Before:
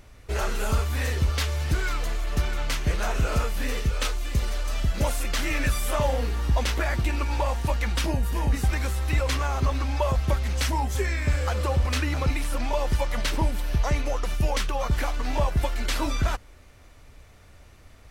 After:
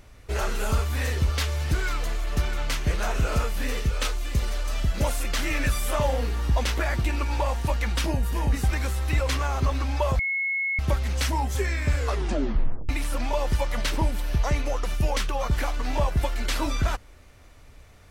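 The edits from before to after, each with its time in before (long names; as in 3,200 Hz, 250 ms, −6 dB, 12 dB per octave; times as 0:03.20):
0:10.19: insert tone 2,180 Hz −23.5 dBFS 0.60 s
0:11.37: tape stop 0.92 s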